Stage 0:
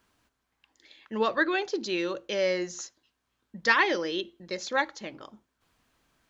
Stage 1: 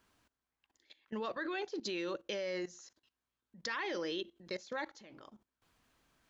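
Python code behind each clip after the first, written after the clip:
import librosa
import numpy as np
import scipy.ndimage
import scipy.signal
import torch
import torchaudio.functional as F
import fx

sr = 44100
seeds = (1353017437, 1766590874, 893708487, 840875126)

y = fx.level_steps(x, sr, step_db=18)
y = F.gain(torch.from_numpy(y), -1.5).numpy()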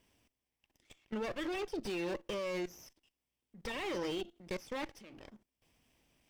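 y = fx.lower_of_two(x, sr, delay_ms=0.36)
y = fx.slew_limit(y, sr, full_power_hz=21.0)
y = F.gain(torch.from_numpy(y), 2.0).numpy()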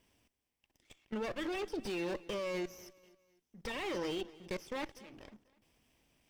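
y = fx.echo_feedback(x, sr, ms=246, feedback_pct=41, wet_db=-20.5)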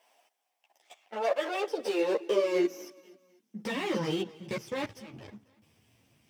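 y = fx.filter_sweep_highpass(x, sr, from_hz=710.0, to_hz=110.0, start_s=1.11, end_s=4.92, q=4.7)
y = fx.ensemble(y, sr)
y = F.gain(torch.from_numpy(y), 8.0).numpy()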